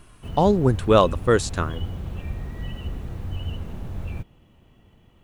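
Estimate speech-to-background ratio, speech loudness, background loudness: 13.0 dB, -20.5 LUFS, -33.5 LUFS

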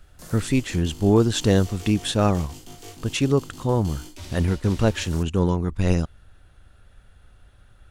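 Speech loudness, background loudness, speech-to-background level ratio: -23.0 LUFS, -41.5 LUFS, 18.5 dB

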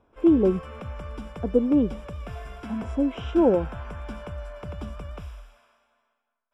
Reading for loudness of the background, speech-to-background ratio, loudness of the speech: -38.0 LUFS, 14.5 dB, -23.5 LUFS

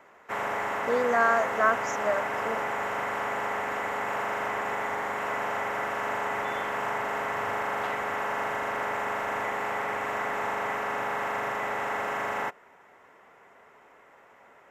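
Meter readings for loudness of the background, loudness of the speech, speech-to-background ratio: -30.0 LUFS, -27.0 LUFS, 3.0 dB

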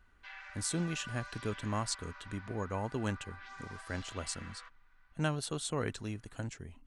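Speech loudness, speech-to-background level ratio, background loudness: -38.0 LUFS, 11.5 dB, -49.5 LUFS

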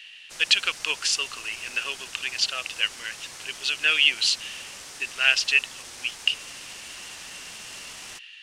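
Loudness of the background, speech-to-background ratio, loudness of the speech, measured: -39.5 LUFS, 16.0 dB, -23.5 LUFS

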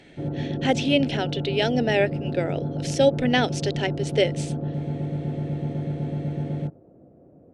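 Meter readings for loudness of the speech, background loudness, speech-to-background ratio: -24.5 LUFS, -29.5 LUFS, 5.0 dB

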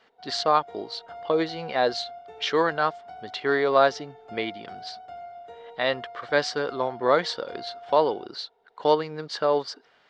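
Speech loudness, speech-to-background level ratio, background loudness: -25.5 LUFS, 17.5 dB, -43.0 LUFS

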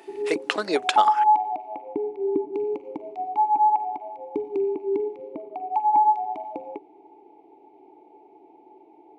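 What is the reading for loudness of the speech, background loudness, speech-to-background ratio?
-26.5 LUFS, -24.5 LUFS, -2.0 dB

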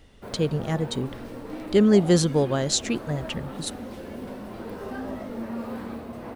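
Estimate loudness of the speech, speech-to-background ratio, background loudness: -24.0 LUFS, 12.5 dB, -36.5 LUFS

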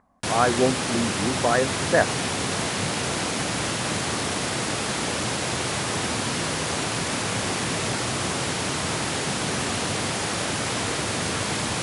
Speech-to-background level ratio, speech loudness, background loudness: 1.0 dB, -24.5 LUFS, -25.5 LUFS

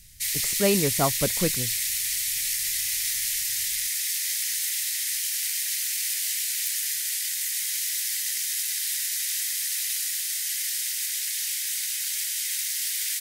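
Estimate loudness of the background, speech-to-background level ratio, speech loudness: -25.0 LUFS, -2.5 dB, -27.5 LUFS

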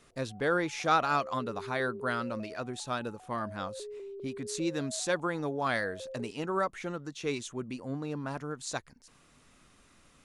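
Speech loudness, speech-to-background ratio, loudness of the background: -33.5 LUFS, 11.5 dB, -45.0 LUFS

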